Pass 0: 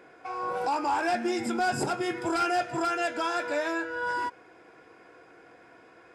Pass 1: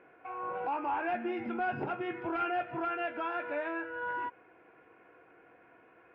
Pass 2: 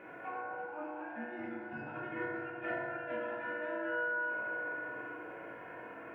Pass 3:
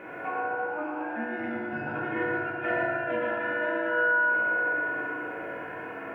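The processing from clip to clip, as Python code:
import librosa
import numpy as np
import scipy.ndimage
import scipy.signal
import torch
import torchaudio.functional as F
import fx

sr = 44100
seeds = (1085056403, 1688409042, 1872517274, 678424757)

y1 = scipy.signal.sosfilt(scipy.signal.cheby1(4, 1.0, 2800.0, 'lowpass', fs=sr, output='sos'), x)
y1 = F.gain(torch.from_numpy(y1), -5.5).numpy()
y2 = fx.over_compress(y1, sr, threshold_db=-46.0, ratio=-1.0)
y2 = y2 + 10.0 ** (-12.0 / 20.0) * np.pad(y2, (int(609 * sr / 1000.0), 0))[:len(y2)]
y2 = fx.rev_fdn(y2, sr, rt60_s=2.3, lf_ratio=0.85, hf_ratio=0.35, size_ms=10.0, drr_db=-6.5)
y2 = F.gain(torch.from_numpy(y2), -4.0).numpy()
y3 = y2 + 10.0 ** (-4.0 / 20.0) * np.pad(y2, (int(119 * sr / 1000.0), 0))[:len(y2)]
y3 = F.gain(torch.from_numpy(y3), 8.5).numpy()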